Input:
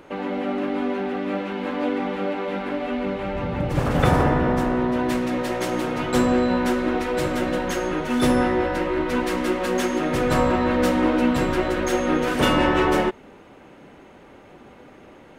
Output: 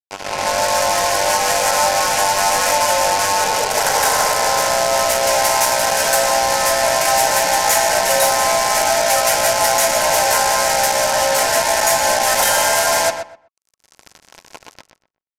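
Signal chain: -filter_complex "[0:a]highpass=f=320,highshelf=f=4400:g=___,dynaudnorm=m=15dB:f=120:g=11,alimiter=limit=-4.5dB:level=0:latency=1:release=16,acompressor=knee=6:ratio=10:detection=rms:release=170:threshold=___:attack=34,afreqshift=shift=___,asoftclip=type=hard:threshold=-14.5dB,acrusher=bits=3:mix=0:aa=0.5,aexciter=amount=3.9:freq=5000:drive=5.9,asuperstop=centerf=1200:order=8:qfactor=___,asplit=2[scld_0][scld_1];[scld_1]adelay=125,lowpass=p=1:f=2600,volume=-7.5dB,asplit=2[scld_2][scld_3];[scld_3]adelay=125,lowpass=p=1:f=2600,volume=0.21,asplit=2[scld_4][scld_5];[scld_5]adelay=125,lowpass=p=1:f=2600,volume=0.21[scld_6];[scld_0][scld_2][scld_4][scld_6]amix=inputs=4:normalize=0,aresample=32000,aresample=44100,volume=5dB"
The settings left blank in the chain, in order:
-9, -20dB, 300, 7.7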